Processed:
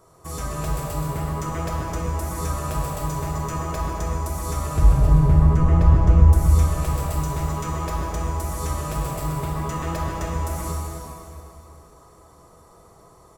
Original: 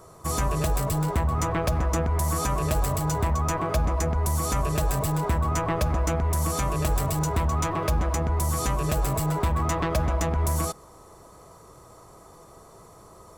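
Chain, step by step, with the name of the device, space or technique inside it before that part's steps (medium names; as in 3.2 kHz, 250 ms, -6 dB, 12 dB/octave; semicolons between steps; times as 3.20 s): 4.76–6.33 s: RIAA curve playback; cave (delay 264 ms -9.5 dB; reverberation RT60 3.0 s, pre-delay 14 ms, DRR -2.5 dB); trim -7 dB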